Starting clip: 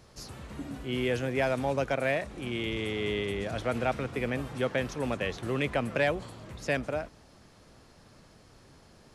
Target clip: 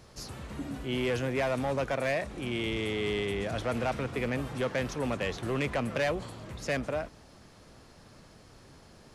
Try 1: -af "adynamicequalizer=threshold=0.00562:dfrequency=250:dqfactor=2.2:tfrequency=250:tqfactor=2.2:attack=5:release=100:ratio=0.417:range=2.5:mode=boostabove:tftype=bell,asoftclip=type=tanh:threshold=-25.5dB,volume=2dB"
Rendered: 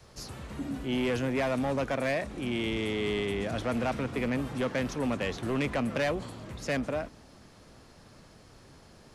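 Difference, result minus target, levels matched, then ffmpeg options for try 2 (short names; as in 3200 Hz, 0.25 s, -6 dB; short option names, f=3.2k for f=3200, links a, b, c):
250 Hz band +2.5 dB
-af "asoftclip=type=tanh:threshold=-25.5dB,volume=2dB"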